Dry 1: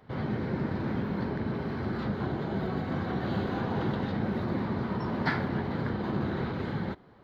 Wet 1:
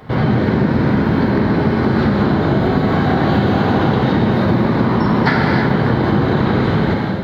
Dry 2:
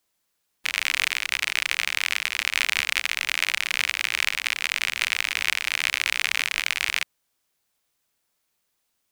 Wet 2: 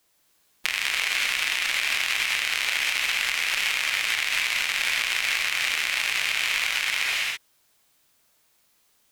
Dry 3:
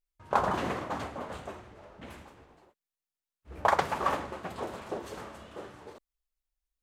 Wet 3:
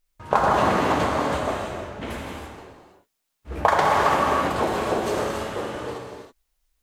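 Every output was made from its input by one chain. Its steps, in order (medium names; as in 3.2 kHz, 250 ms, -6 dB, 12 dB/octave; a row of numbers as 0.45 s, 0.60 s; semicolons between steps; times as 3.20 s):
gated-style reverb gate 350 ms flat, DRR -0.5 dB; peak limiter -7.5 dBFS; compression 3:1, threshold -29 dBFS; peak normalisation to -2 dBFS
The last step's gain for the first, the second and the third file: +17.5 dB, +6.5 dB, +12.0 dB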